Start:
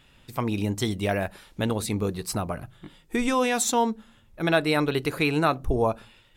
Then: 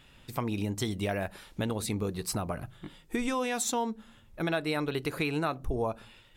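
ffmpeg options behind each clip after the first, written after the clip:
-af "acompressor=threshold=-30dB:ratio=2.5"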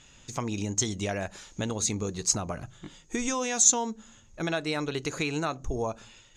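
-af "lowpass=f=6.6k:t=q:w=15"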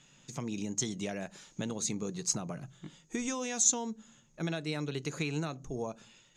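-filter_complex "[0:a]lowshelf=f=110:t=q:w=3:g=-9,acrossover=split=640|1700[a][b][c];[b]alimiter=level_in=7.5dB:limit=-24dB:level=0:latency=1:release=483,volume=-7.5dB[d];[a][d][c]amix=inputs=3:normalize=0,volume=-6dB"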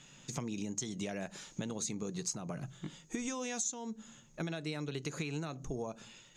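-af "acompressor=threshold=-39dB:ratio=6,volume=4dB"

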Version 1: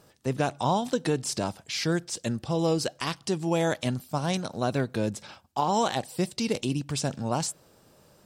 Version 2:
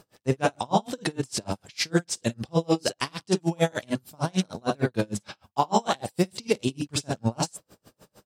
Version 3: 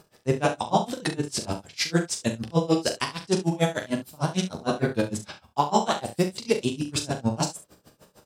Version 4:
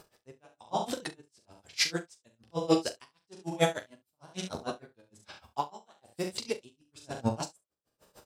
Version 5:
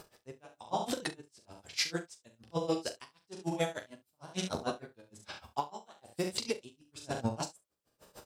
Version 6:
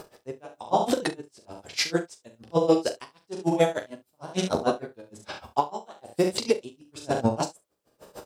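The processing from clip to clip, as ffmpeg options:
-filter_complex "[0:a]asplit=2[a][b];[b]aecho=0:1:43|53:0.398|0.631[c];[a][c]amix=inputs=2:normalize=0,aeval=exprs='val(0)*pow(10,-36*(0.5-0.5*cos(2*PI*6.6*n/s))/20)':c=same,volume=6dB"
-af "aecho=1:1:13|41|68:0.355|0.376|0.211"
-af "equalizer=f=170:w=0.97:g=-6.5,aeval=exprs='val(0)*pow(10,-34*(0.5-0.5*cos(2*PI*1.1*n/s))/20)':c=same"
-af "acompressor=threshold=-33dB:ratio=5,volume=3.5dB"
-af "equalizer=f=460:w=0.5:g=7.5,volume=5dB"

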